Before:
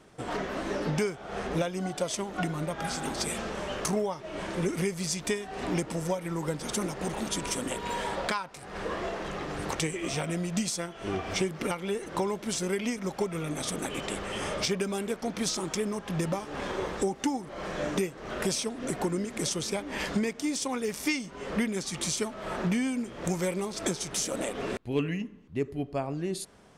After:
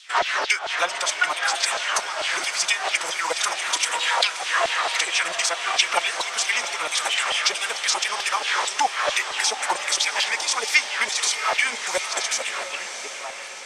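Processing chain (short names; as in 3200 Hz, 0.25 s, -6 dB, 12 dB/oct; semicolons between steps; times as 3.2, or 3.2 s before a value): ending faded out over 4.53 s; tilt +3 dB/oct; notches 50/100/150/200/250 Hz; in parallel at 0 dB: vocal rider within 5 dB 0.5 s; on the sum: LFO high-pass saw down 2.3 Hz 640–4000 Hz; time stretch by phase-locked vocoder 0.51×; air absorption 78 m; on a send: diffused feedback echo 0.717 s, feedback 61%, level -9.5 dB; on the sum: gain +5 dB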